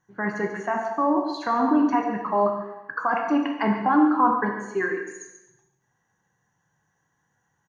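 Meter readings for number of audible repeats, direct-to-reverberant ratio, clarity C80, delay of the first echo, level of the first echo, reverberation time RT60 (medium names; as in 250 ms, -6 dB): 1, 1.5 dB, 6.0 dB, 141 ms, -11.5 dB, 0.95 s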